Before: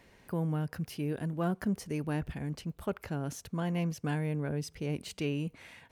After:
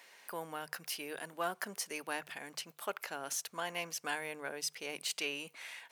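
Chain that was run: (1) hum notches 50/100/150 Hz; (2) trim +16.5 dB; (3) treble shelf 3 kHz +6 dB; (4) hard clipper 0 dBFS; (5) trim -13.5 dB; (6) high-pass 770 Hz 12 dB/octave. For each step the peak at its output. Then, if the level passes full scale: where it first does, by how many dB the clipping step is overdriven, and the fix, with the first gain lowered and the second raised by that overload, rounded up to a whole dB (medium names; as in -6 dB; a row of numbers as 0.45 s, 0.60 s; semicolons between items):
-20.5 dBFS, -4.0 dBFS, -3.5 dBFS, -3.5 dBFS, -17.0 dBFS, -21.5 dBFS; nothing clips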